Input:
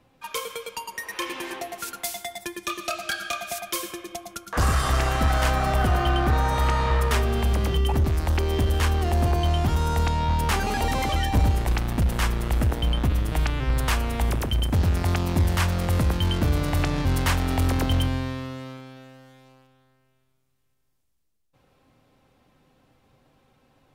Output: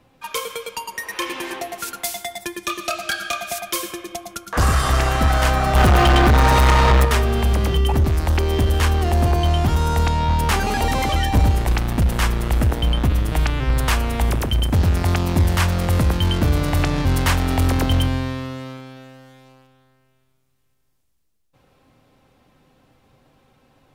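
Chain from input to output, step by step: 5.75–7.05 s: waveshaping leveller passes 3; trim +4.5 dB

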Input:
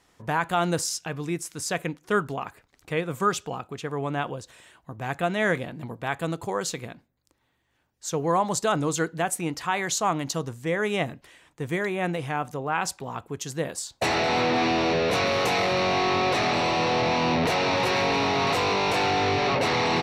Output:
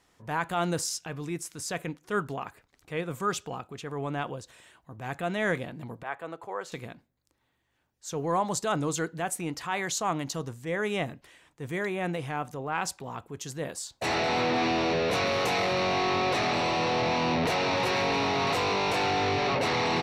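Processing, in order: transient shaper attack -5 dB, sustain 0 dB; 6.03–6.72 s: three-band isolator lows -17 dB, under 400 Hz, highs -15 dB, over 2.4 kHz; trim -3 dB

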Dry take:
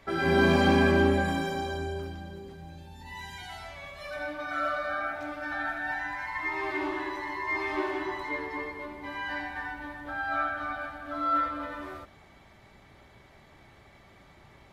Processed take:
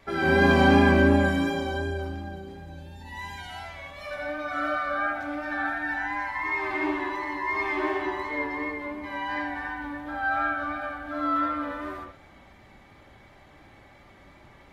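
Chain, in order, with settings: reverberation, pre-delay 57 ms, DRR 0 dB; vibrato 2.8 Hz 24 cents

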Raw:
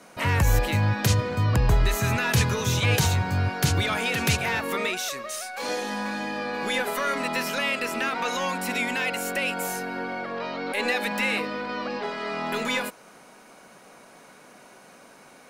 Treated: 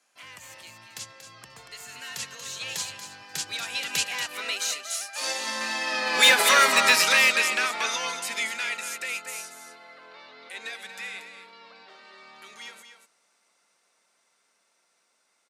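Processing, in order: Doppler pass-by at 6.46 s, 26 m/s, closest 17 m; low-pass 7.5 kHz 12 dB/octave; tilt EQ +4.5 dB/octave; delay 234 ms -7.5 dB; hard clipper -18 dBFS, distortion -20 dB; high-pass 110 Hz; upward expansion 1.5:1, over -42 dBFS; trim +8 dB

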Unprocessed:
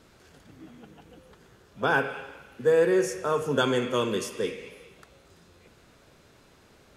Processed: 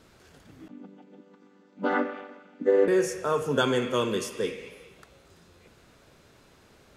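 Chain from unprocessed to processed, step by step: 0.68–2.88 s: vocoder on a held chord major triad, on G3

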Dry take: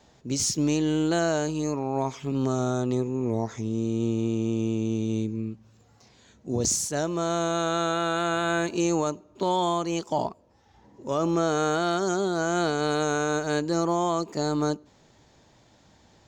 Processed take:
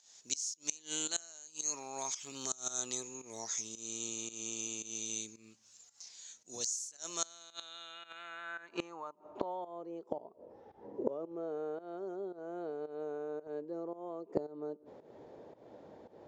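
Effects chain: volume shaper 112 bpm, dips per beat 1, -15 dB, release 216 ms; band-pass sweep 6.6 kHz -> 470 Hz, 7.11–9.88 s; inverted gate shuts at -31 dBFS, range -24 dB; trim +13.5 dB

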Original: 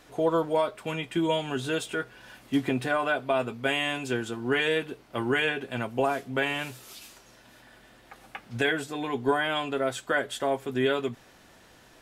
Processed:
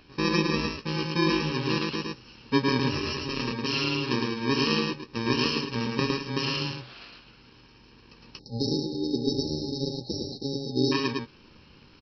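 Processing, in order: bit-reversed sample order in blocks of 64 samples; doubling 13 ms -11 dB; on a send: delay 110 ms -3 dB; on the sum: spectral selection erased 8.39–10.92 s, 880–3700 Hz; resampled via 11.025 kHz; trim +5 dB

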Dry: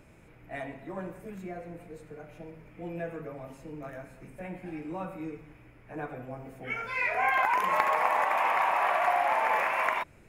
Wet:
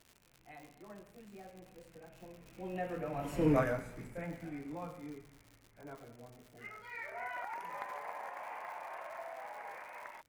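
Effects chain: Doppler pass-by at 3.50 s, 25 m/s, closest 2.6 m; crackle 150 per s -61 dBFS; trim +14.5 dB

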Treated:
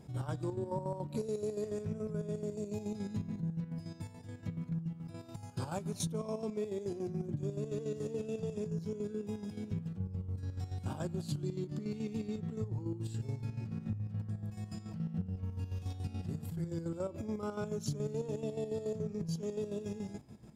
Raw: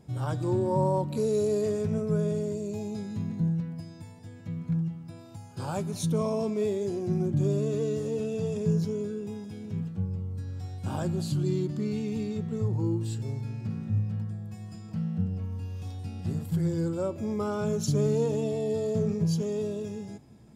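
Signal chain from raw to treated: compression 5:1, threshold -34 dBFS, peak gain reduction 12 dB; square tremolo 7 Hz, depth 60%, duty 50%; trim +1 dB

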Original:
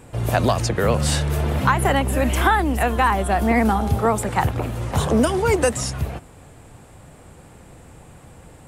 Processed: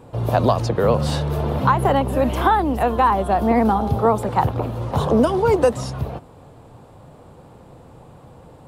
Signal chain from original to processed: graphic EQ 125/250/500/1000/2000/4000/8000 Hz +6/+4/+7/+8/-5/+5/-8 dB; trim -5.5 dB

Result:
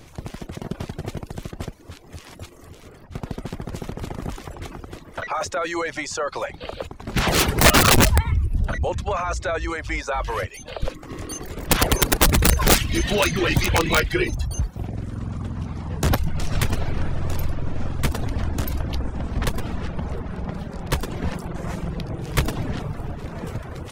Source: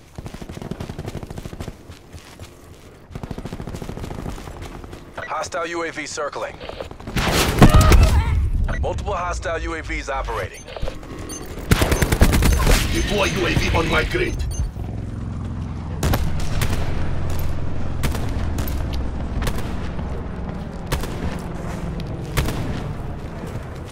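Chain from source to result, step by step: integer overflow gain 8 dB; reverb removal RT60 0.56 s

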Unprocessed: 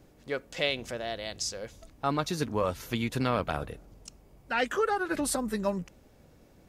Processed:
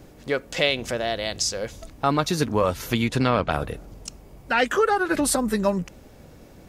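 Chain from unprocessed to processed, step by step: 3.08–3.50 s: low-pass 9.6 kHz -> 5.5 kHz 12 dB/octave; in parallel at -1 dB: compression, threshold -35 dBFS, peak gain reduction 12 dB; on the sum: trim +5 dB

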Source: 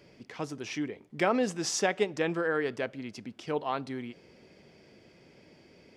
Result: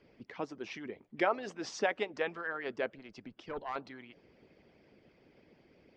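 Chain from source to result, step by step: distance through air 180 m; 2.98–3.76 s: valve stage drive 24 dB, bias 0.45; harmonic-percussive split harmonic -17 dB

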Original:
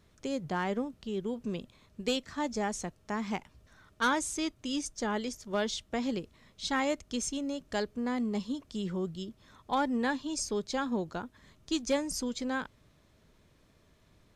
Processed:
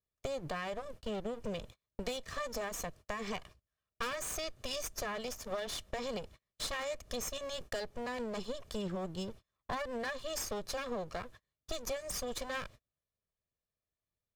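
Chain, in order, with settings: comb filter that takes the minimum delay 1.7 ms; gate -52 dBFS, range -38 dB; in parallel at 0 dB: peak limiter -29 dBFS, peak gain reduction 8.5 dB; on the sum: compression 6:1, threshold -38 dBFS, peak gain reduction 14.5 dB; trim +2 dB

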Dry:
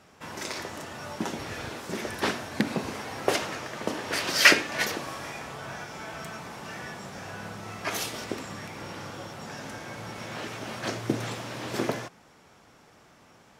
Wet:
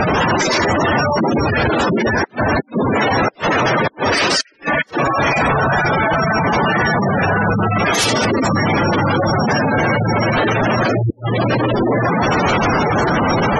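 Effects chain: one-bit delta coder 64 kbps, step -13.5 dBFS; inverted gate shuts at -13 dBFS, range -40 dB; spectral gate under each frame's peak -10 dB strong; trim +7 dB

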